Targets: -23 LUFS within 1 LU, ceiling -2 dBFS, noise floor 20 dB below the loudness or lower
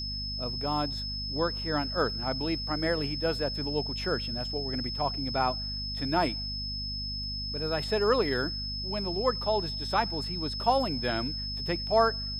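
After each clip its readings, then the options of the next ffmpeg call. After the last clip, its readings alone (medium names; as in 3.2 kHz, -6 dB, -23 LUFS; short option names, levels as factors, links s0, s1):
hum 50 Hz; highest harmonic 250 Hz; hum level -36 dBFS; steady tone 5.2 kHz; tone level -34 dBFS; loudness -29.5 LUFS; peak level -11.0 dBFS; loudness target -23.0 LUFS
-> -af "bandreject=f=50:t=h:w=4,bandreject=f=100:t=h:w=4,bandreject=f=150:t=h:w=4,bandreject=f=200:t=h:w=4,bandreject=f=250:t=h:w=4"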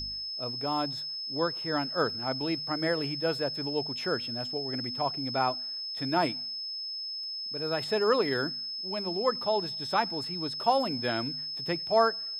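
hum not found; steady tone 5.2 kHz; tone level -34 dBFS
-> -af "bandreject=f=5200:w=30"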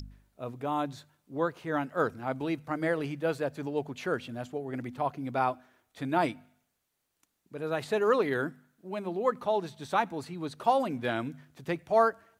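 steady tone not found; loudness -31.5 LUFS; peak level -11.5 dBFS; loudness target -23.0 LUFS
-> -af "volume=2.66"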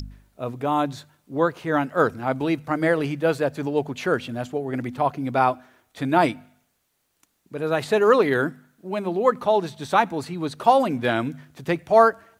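loudness -23.0 LUFS; peak level -3.0 dBFS; noise floor -71 dBFS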